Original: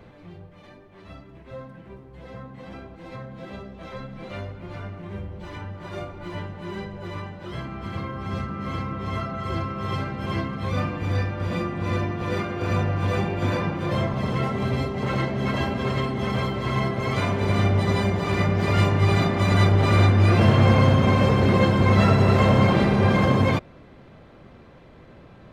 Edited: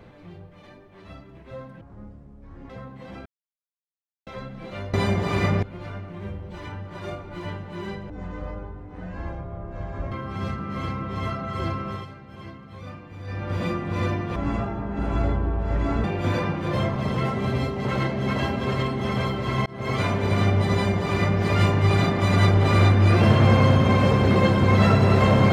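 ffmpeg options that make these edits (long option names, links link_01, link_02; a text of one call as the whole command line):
ffmpeg -i in.wav -filter_complex "[0:a]asplit=14[link_01][link_02][link_03][link_04][link_05][link_06][link_07][link_08][link_09][link_10][link_11][link_12][link_13][link_14];[link_01]atrim=end=1.814[link_15];[link_02]atrim=start=1.81:end=2.28,asetpts=PTS-STARTPTS,asetrate=23373,aresample=44100[link_16];[link_03]atrim=start=2.276:end=2.84,asetpts=PTS-STARTPTS,afade=type=out:start_time=0.56:duration=0.004:curve=hsin[link_17];[link_04]atrim=start=2.84:end=3.85,asetpts=PTS-STARTPTS,volume=0[link_18];[link_05]atrim=start=3.85:end=4.522,asetpts=PTS-STARTPTS,afade=type=in:duration=0.004:curve=hsin[link_19];[link_06]atrim=start=17.898:end=18.592[link_20];[link_07]atrim=start=4.518:end=6.994[link_21];[link_08]atrim=start=6.99:end=8.02,asetpts=PTS-STARTPTS,asetrate=22491,aresample=44100[link_22];[link_09]atrim=start=8.016:end=9.96,asetpts=PTS-STARTPTS,afade=type=out:start_time=1.764:duration=0.18:silence=0.211349[link_23];[link_10]atrim=start=9.96:end=11.17,asetpts=PTS-STARTPTS,volume=-13.5dB[link_24];[link_11]atrim=start=11.17:end=12.264,asetpts=PTS-STARTPTS,afade=type=in:duration=0.18:silence=0.211349[link_25];[link_12]atrim=start=12.26:end=13.22,asetpts=PTS-STARTPTS,asetrate=25137,aresample=44100[link_26];[link_13]atrim=start=13.216:end=16.84,asetpts=PTS-STARTPTS,afade=type=out:start_time=3.62:duration=0.004:curve=hsin[link_27];[link_14]atrim=start=16.84,asetpts=PTS-STARTPTS,afade=type=in:duration=0.25[link_28];[link_15][link_16]acrossfade=duration=0.004:curve1=hsin:curve2=hsin[link_29];[link_17][link_18][link_19]concat=n=3:v=0:a=1[link_30];[link_29][link_30]acrossfade=duration=0.004:curve1=hsin:curve2=hsin[link_31];[link_31][link_20]acrossfade=duration=0.004:curve1=hsin:curve2=hsin[link_32];[link_32][link_21]acrossfade=duration=0.004:curve1=hsin:curve2=hsin[link_33];[link_33][link_22]acrossfade=duration=0.004:curve1=hsin:curve2=hsin[link_34];[link_23][link_24][link_25]concat=n=3:v=0:a=1[link_35];[link_34][link_35]acrossfade=duration=0.004:curve1=hsin:curve2=hsin[link_36];[link_36][link_26]acrossfade=duration=0.004:curve1=hsin:curve2=hsin[link_37];[link_27][link_28]concat=n=2:v=0:a=1[link_38];[link_37][link_38]acrossfade=duration=0.004:curve1=hsin:curve2=hsin" out.wav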